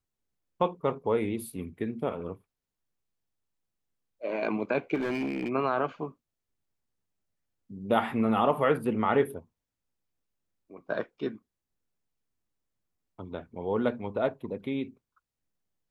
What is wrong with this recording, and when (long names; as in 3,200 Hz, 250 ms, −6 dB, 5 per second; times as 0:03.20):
0:04.94–0:05.50: clipping −26 dBFS